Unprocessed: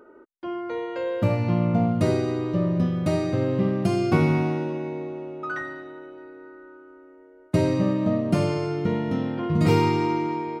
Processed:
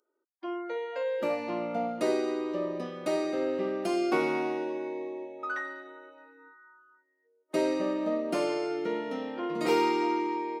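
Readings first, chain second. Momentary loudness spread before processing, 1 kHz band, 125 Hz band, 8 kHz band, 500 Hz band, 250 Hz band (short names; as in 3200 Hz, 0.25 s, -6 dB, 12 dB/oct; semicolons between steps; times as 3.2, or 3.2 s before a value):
14 LU, -2.5 dB, -26.0 dB, -2.5 dB, -3.0 dB, -8.0 dB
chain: HPF 310 Hz 24 dB/oct; spectral noise reduction 27 dB; gain -2.5 dB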